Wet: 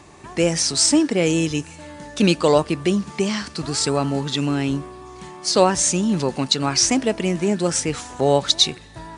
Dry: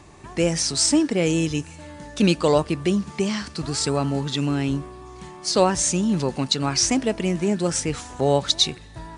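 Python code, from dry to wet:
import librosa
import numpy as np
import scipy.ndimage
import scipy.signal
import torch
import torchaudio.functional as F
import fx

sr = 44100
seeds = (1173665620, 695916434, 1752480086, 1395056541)

y = fx.low_shelf(x, sr, hz=110.0, db=-8.0)
y = y * librosa.db_to_amplitude(3.0)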